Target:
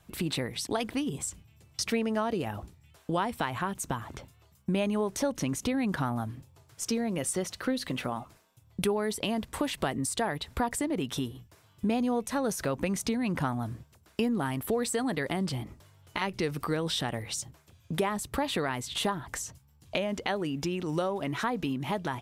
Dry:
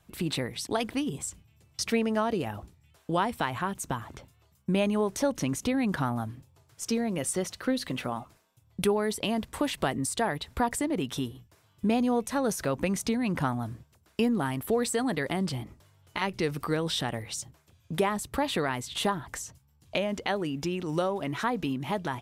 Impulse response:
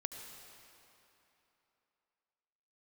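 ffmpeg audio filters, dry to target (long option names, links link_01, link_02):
-af "acompressor=threshold=-37dB:ratio=1.5,volume=3dB"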